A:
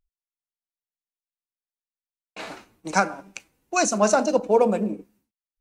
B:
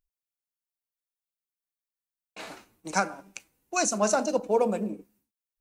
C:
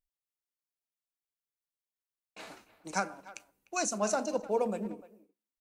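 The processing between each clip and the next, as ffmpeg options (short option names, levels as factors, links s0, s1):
-af "highshelf=f=8100:g=9.5,volume=0.531"
-filter_complex "[0:a]asplit=2[s0][s1];[s1]adelay=300,highpass=300,lowpass=3400,asoftclip=type=hard:threshold=0.119,volume=0.141[s2];[s0][s2]amix=inputs=2:normalize=0,volume=0.501"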